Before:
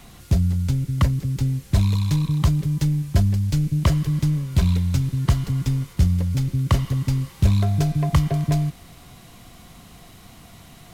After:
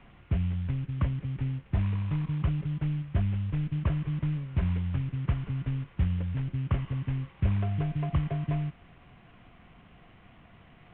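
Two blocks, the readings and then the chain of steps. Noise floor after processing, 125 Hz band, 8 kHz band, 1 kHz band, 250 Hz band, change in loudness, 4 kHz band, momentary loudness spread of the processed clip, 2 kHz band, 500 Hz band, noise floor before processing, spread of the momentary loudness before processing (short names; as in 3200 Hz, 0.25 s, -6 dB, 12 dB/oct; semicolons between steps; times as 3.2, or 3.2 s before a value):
-56 dBFS, -9.0 dB, under -40 dB, -10.0 dB, -9.0 dB, -9.0 dB, under -15 dB, 3 LU, -7.5 dB, -9.0 dB, -46 dBFS, 3 LU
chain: CVSD 16 kbps; gain -8.5 dB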